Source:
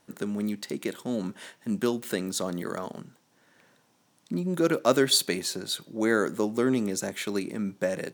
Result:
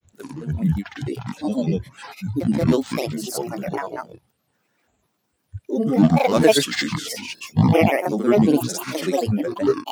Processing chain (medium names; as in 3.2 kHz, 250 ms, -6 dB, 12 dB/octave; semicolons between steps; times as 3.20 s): gliding tape speed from 67% -> 97%; spectral noise reduction 14 dB; harmonic-percussive split harmonic +9 dB; reverse echo 69 ms -8 dB; granulator, pitch spread up and down by 12 st; trim +2 dB